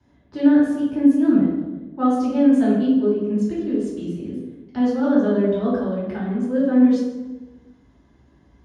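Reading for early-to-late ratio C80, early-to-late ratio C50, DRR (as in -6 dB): 3.5 dB, 0.5 dB, -9.0 dB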